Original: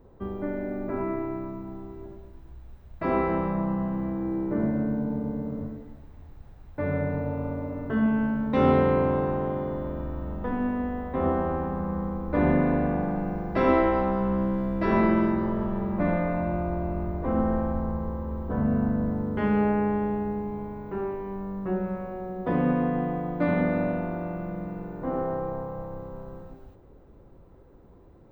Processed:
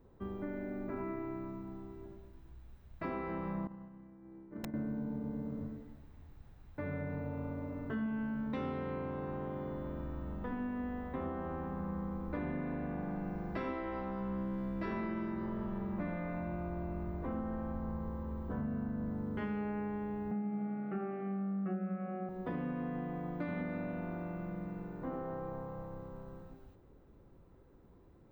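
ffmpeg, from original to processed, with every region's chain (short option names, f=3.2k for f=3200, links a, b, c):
-filter_complex "[0:a]asettb=1/sr,asplit=3[a][b][c];[a]atrim=end=3.674[d];[b]atrim=start=3.67:end=4.74,asetpts=PTS-STARTPTS,afade=t=in:d=0.004:c=qsin,afade=t=out:st=1.066:d=0.004:c=qsin,agate=range=-33dB:threshold=-18dB:ratio=3:release=100:detection=peak,aeval=exprs='(mod(21.1*val(0)+1,2)-1)/21.1':c=same[e];[c]atrim=start=4.736[f];[d][e]acrossfade=d=0.004:c1=hsin:c2=qsin[g];[g][f]acrossfade=d=0.004:c1=qsin:c2=hsin,asettb=1/sr,asplit=3[h][i][j];[h]atrim=end=20.314[k];[i]atrim=start=20.31:end=22.29,asetpts=PTS-STARTPTS,afade=t=in:d=0.004:c=qsin,afade=t=out:st=1.976:d=0.004:c=qsin,highpass=f=180:w=0.5412,highpass=f=180:w=1.3066,equalizer=f=200:t=q:w=4:g=6,equalizer=f=280:t=q:w=4:g=-9,equalizer=f=450:t=q:w=4:g=-9,equalizer=f=940:t=q:w=4:g=9,equalizer=f=1.7k:t=q:w=4:g=-5,lowpass=f=2.5k:w=0.5412,lowpass=f=2.5k:w=1.3066,acontrast=82,asuperstop=centerf=960:order=12:qfactor=3.1[l];[j]atrim=start=22.286[m];[k][l]acrossfade=d=0.004:c1=hsin:c2=qsin[n];[n][m]acrossfade=d=0.004:c1=qsin:c2=hsin,lowshelf=f=110:g=-5,acompressor=threshold=-28dB:ratio=6,equalizer=f=620:w=0.78:g=-5.5,volume=-4.5dB"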